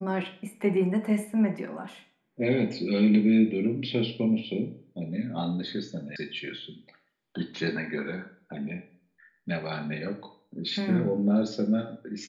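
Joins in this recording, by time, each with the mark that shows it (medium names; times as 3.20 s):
6.16 s: sound stops dead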